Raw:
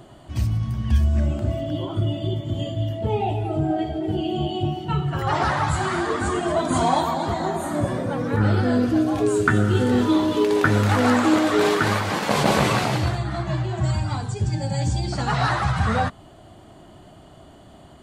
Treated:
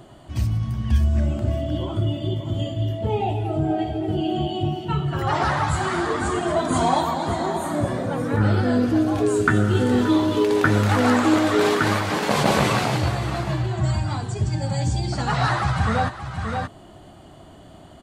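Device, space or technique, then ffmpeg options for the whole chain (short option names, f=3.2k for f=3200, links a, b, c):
ducked delay: -filter_complex "[0:a]asplit=3[a][b][c];[b]adelay=576,volume=-4.5dB[d];[c]apad=whole_len=820397[e];[d][e]sidechaincompress=threshold=-29dB:ratio=4:attack=16:release=536[f];[a][f]amix=inputs=2:normalize=0"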